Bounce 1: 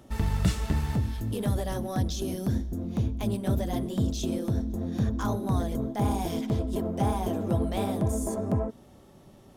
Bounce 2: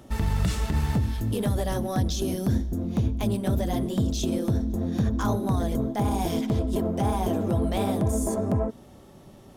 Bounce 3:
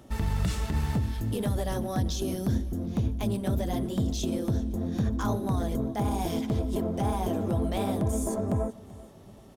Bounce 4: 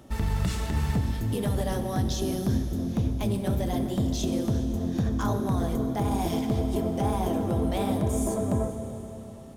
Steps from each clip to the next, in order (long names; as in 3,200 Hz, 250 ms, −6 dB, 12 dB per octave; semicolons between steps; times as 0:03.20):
brickwall limiter −19.5 dBFS, peak gain reduction 8 dB; level +4 dB
repeating echo 385 ms, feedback 39%, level −20 dB; level −3 dB
convolution reverb RT60 3.4 s, pre-delay 28 ms, DRR 7 dB; level +1 dB